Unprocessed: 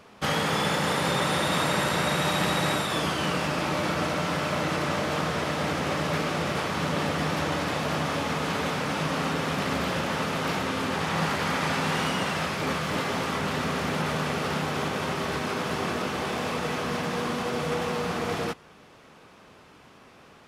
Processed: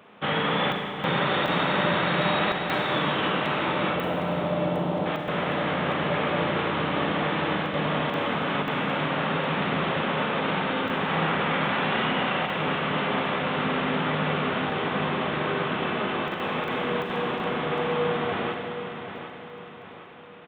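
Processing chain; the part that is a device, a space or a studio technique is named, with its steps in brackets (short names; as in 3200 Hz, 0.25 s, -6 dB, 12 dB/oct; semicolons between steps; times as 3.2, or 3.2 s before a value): call with lost packets (HPF 130 Hz 12 dB/oct; downsampling 8000 Hz; packet loss packets of 20 ms bursts); 3.93–5.06 EQ curve 810 Hz 0 dB, 1900 Hz -21 dB, 12000 Hz +7 dB; feedback echo 0.759 s, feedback 45%, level -10 dB; Schroeder reverb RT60 2.4 s, combs from 31 ms, DRR 2.5 dB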